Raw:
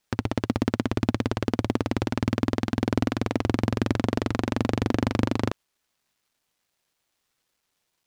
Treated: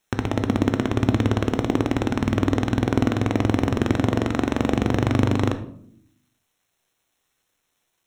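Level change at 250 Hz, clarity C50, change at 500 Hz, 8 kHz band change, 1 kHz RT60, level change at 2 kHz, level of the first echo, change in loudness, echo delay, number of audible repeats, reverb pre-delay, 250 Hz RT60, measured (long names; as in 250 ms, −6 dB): +4.5 dB, 12.0 dB, +4.0 dB, +3.0 dB, 0.55 s, +3.5 dB, no echo audible, +4.5 dB, no echo audible, no echo audible, 3 ms, 1.1 s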